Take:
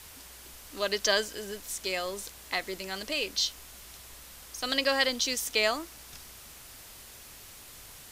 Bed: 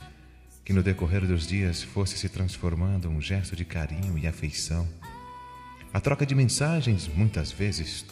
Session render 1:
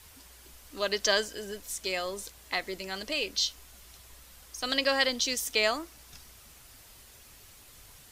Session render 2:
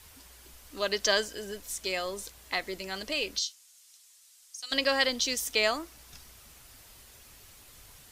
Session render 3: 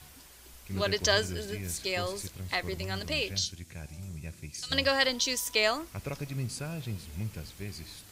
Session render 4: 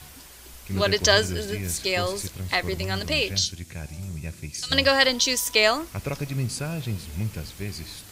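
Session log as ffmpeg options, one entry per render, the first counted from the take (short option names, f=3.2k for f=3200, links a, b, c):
-af "afftdn=nr=6:nf=-49"
-filter_complex "[0:a]asplit=3[a][b][c];[a]afade=t=out:st=3.38:d=0.02[d];[b]bandpass=f=7.3k:t=q:w=1.1,afade=t=in:st=3.38:d=0.02,afade=t=out:st=4.71:d=0.02[e];[c]afade=t=in:st=4.71:d=0.02[f];[d][e][f]amix=inputs=3:normalize=0"
-filter_complex "[1:a]volume=-12.5dB[a];[0:a][a]amix=inputs=2:normalize=0"
-af "volume=7dB"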